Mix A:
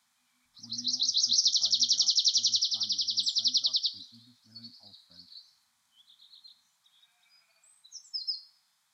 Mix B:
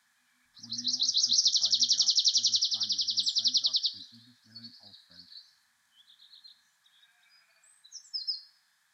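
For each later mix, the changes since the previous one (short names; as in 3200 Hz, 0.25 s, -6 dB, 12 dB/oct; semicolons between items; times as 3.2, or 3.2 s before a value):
master: add bell 1700 Hz +14.5 dB 0.3 oct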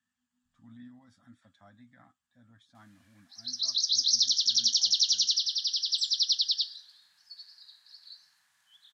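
background: entry +2.75 s; master: remove notch 2800 Hz, Q 8.3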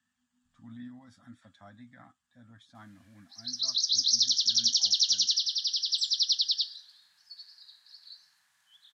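speech +5.0 dB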